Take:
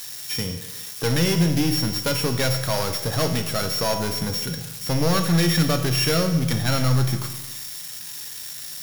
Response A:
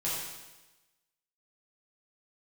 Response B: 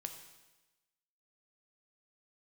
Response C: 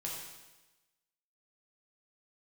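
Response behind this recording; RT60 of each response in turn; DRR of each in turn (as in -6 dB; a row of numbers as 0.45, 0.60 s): B; 1.1, 1.1, 1.1 s; -8.5, 5.5, -4.0 dB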